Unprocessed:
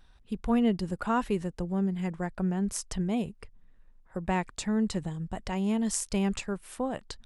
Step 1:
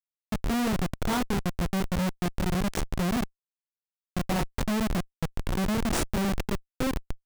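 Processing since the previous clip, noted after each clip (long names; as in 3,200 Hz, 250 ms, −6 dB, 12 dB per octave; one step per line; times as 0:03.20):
chorus effect 1.3 Hz, depth 6.1 ms
comparator with hysteresis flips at −31 dBFS
level +8 dB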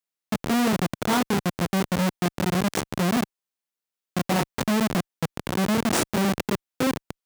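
high-pass filter 150 Hz 12 dB per octave
level +5.5 dB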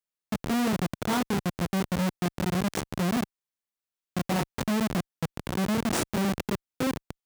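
low-shelf EQ 110 Hz +7 dB
level −5 dB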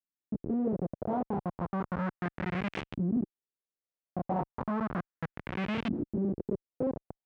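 auto-filter low-pass saw up 0.34 Hz 260–3,000 Hz
level −6.5 dB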